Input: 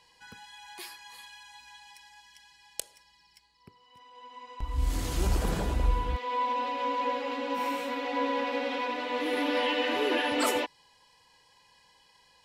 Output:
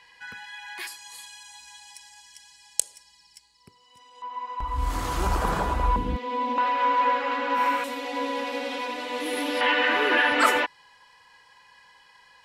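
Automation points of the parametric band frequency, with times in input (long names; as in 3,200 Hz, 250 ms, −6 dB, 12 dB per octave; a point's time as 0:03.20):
parametric band +14 dB 1.4 octaves
1,800 Hz
from 0:00.87 7,900 Hz
from 0:04.22 1,100 Hz
from 0:05.96 220 Hz
from 0:06.58 1,400 Hz
from 0:07.84 10,000 Hz
from 0:09.61 1,500 Hz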